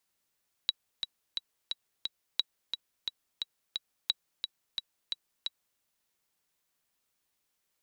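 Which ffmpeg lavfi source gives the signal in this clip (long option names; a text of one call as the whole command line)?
ffmpeg -f lavfi -i "aevalsrc='pow(10,(-13-6.5*gte(mod(t,5*60/176),60/176))/20)*sin(2*PI*3890*mod(t,60/176))*exp(-6.91*mod(t,60/176)/0.03)':duration=5.11:sample_rate=44100" out.wav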